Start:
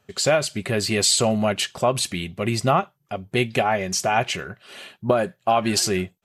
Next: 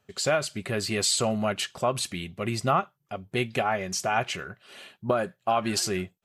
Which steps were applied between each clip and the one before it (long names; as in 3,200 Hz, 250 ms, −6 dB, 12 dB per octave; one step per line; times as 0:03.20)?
dynamic equaliser 1,300 Hz, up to +5 dB, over −40 dBFS, Q 2.8
level −6 dB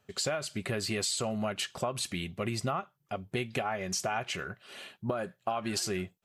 downward compressor, threshold −29 dBFS, peak gain reduction 10.5 dB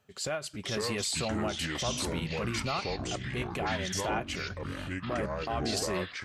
delay with pitch and tempo change per echo 415 ms, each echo −5 semitones, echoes 3
transient designer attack −9 dB, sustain −5 dB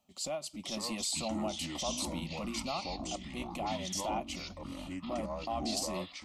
phaser with its sweep stopped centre 430 Hz, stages 6
level −1 dB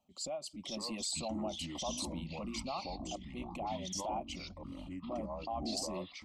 spectral envelope exaggerated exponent 1.5
level −3 dB